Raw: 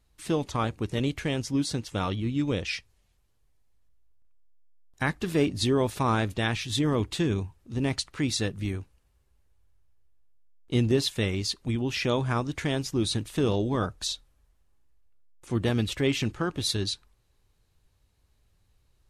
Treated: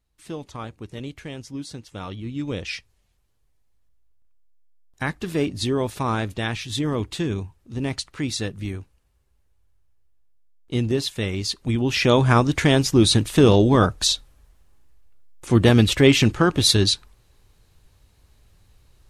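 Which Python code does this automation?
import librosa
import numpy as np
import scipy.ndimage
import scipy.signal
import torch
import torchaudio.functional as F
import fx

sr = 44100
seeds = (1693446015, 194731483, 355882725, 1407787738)

y = fx.gain(x, sr, db=fx.line((1.88, -6.5), (2.7, 1.0), (11.19, 1.0), (12.32, 11.0)))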